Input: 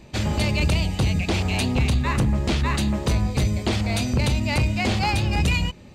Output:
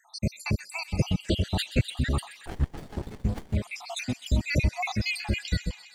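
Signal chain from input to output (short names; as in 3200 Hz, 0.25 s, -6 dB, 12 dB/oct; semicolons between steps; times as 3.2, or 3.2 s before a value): random spectral dropouts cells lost 81%; thin delay 0.128 s, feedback 76%, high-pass 2000 Hz, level -12.5 dB; 2.46–3.55 running maximum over 33 samples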